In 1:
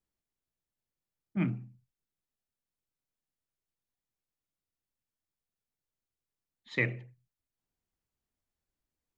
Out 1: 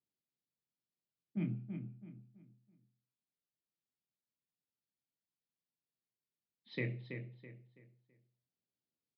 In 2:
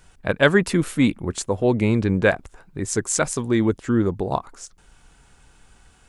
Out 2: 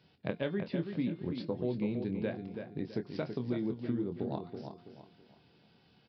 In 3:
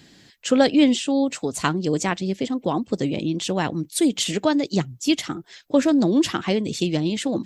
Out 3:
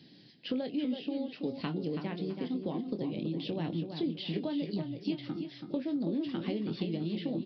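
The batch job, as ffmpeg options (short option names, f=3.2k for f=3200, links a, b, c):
-filter_complex "[0:a]highpass=f=120:w=0.5412,highpass=f=120:w=1.3066,bandreject=f=353.8:t=h:w=4,bandreject=f=707.6:t=h:w=4,bandreject=f=1.0614k:t=h:w=4,bandreject=f=1.4152k:t=h:w=4,bandreject=f=1.769k:t=h:w=4,bandreject=f=2.1228k:t=h:w=4,bandreject=f=2.4766k:t=h:w=4,bandreject=f=2.8304k:t=h:w=4,bandreject=f=3.1842k:t=h:w=4,bandreject=f=3.538k:t=h:w=4,bandreject=f=3.8918k:t=h:w=4,bandreject=f=4.2456k:t=h:w=4,bandreject=f=4.5994k:t=h:w=4,bandreject=f=4.9532k:t=h:w=4,bandreject=f=5.307k:t=h:w=4,bandreject=f=5.6608k:t=h:w=4,bandreject=f=6.0146k:t=h:w=4,bandreject=f=6.3684k:t=h:w=4,bandreject=f=6.7222k:t=h:w=4,bandreject=f=7.076k:t=h:w=4,bandreject=f=7.4298k:t=h:w=4,bandreject=f=7.7836k:t=h:w=4,bandreject=f=8.1374k:t=h:w=4,bandreject=f=8.4912k:t=h:w=4,bandreject=f=8.845k:t=h:w=4,bandreject=f=9.1988k:t=h:w=4,bandreject=f=9.5526k:t=h:w=4,bandreject=f=9.9064k:t=h:w=4,bandreject=f=10.2602k:t=h:w=4,bandreject=f=10.614k:t=h:w=4,acrossover=split=3700[a][b];[b]acompressor=threshold=-44dB:ratio=4:attack=1:release=60[c];[a][c]amix=inputs=2:normalize=0,equalizer=f=1.3k:w=0.75:g=-14,acompressor=threshold=-29dB:ratio=6,asplit=2[d][e];[e]adelay=24,volume=-8.5dB[f];[d][f]amix=inputs=2:normalize=0,asplit=2[g][h];[h]adelay=329,lowpass=f=3.6k:p=1,volume=-7dB,asplit=2[i][j];[j]adelay=329,lowpass=f=3.6k:p=1,volume=0.34,asplit=2[k][l];[l]adelay=329,lowpass=f=3.6k:p=1,volume=0.34,asplit=2[m][n];[n]adelay=329,lowpass=f=3.6k:p=1,volume=0.34[o];[i][k][m][o]amix=inputs=4:normalize=0[p];[g][p]amix=inputs=2:normalize=0,aresample=11025,aresample=44100,volume=-3dB"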